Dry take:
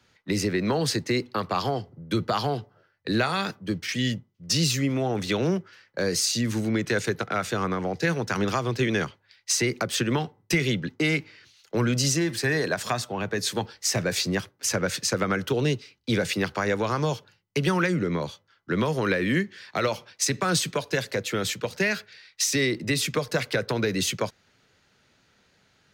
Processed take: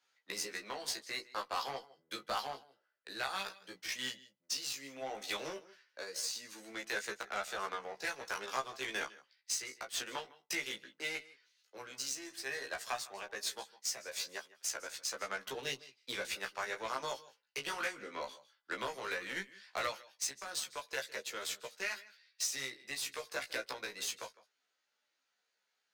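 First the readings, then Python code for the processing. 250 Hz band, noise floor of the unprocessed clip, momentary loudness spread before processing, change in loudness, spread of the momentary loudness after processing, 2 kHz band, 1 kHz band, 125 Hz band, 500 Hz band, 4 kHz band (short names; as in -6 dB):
-27.0 dB, -66 dBFS, 7 LU, -13.5 dB, 8 LU, -11.0 dB, -10.5 dB, -34.0 dB, -17.0 dB, -10.5 dB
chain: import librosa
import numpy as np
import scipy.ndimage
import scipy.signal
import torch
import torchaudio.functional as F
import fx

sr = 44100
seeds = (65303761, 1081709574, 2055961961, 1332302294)

y = scipy.signal.sosfilt(scipy.signal.butter(2, 710.0, 'highpass', fs=sr, output='sos'), x)
y = fx.peak_eq(y, sr, hz=1700.0, db=-3.0, octaves=2.9)
y = fx.rider(y, sr, range_db=5, speed_s=0.5)
y = y + 10.0 ** (-14.5 / 20.0) * np.pad(y, (int(156 * sr / 1000.0), 0))[:len(y)]
y = fx.cheby_harmonics(y, sr, harmonics=(5, 7), levels_db=(-13, -13), full_scale_db=-13.5)
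y = fx.doubler(y, sr, ms=15.0, db=-2.5)
y = fx.chorus_voices(y, sr, voices=2, hz=0.14, base_ms=16, depth_ms=3.1, mix_pct=30)
y = y * 10.0 ** (-8.5 / 20.0)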